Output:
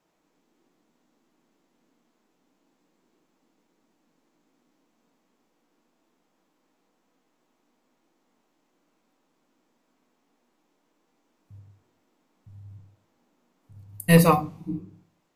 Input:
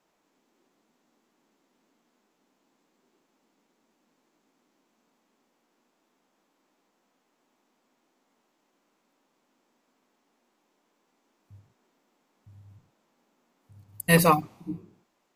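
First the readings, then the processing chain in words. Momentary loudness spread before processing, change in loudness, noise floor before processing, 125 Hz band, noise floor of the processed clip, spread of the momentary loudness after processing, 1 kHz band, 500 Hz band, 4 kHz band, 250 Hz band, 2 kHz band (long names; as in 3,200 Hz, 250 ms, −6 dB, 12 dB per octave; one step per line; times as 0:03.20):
20 LU, +1.0 dB, −74 dBFS, +5.5 dB, −72 dBFS, 18 LU, 0.0 dB, +2.5 dB, −0.5 dB, +5.0 dB, −1.5 dB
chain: low-shelf EQ 220 Hz +7 dB
rectangular room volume 170 cubic metres, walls furnished, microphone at 0.57 metres
level −1.5 dB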